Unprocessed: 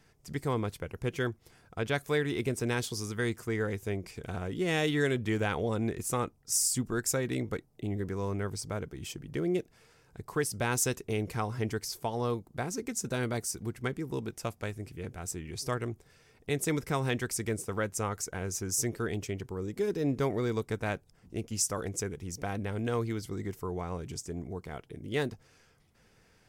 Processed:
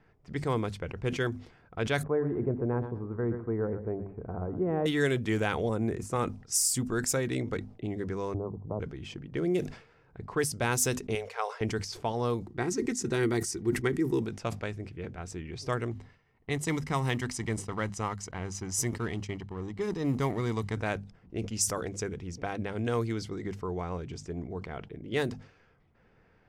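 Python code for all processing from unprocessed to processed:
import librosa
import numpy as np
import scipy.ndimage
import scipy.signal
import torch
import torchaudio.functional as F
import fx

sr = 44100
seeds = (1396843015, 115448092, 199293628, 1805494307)

y = fx.chain(x, sr, fx.lowpass(hz=1100.0, slope=24),
    fx.echo_feedback(ms=117, feedback_pct=29, wet_db=-12), at=(2.03, 4.86))
y = fx.chain(y, sr, fx.highpass(hz=49.0, slope=12),
    fx.peak_eq(hz=3500.0, db=-9.5, octaves=1.7), at=(5.69, 6.16))
y = fx.chain(y, sr, fx.steep_lowpass(hz=1100.0, slope=72),
    fx.band_squash(depth_pct=40), at=(8.34, 8.8))
y = fx.chain(y, sr, fx.brickwall_highpass(low_hz=410.0),
    fx.high_shelf(hz=8300.0, db=5.0), at=(11.15, 11.61))
y = fx.chain(y, sr, fx.peak_eq(hz=580.0, db=-10.5, octaves=0.33),
    fx.small_body(hz=(350.0, 1900.0), ring_ms=35, db=11), at=(12.47, 14.22))
y = fx.chain(y, sr, fx.law_mismatch(coded='A'),
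    fx.comb(ms=1.0, depth=0.39), at=(15.91, 20.77))
y = fx.env_lowpass(y, sr, base_hz=1900.0, full_db=-25.5)
y = fx.hum_notches(y, sr, base_hz=50, count=5)
y = fx.sustainer(y, sr, db_per_s=120.0)
y = F.gain(torch.from_numpy(y), 1.5).numpy()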